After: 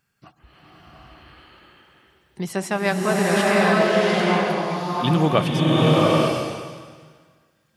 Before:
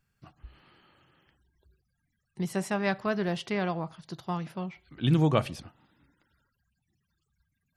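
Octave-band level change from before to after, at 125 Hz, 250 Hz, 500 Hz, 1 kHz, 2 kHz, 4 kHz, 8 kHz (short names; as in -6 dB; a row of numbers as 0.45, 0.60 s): +8.0, +10.0, +13.5, +13.5, +14.0, +14.0, +14.0 dB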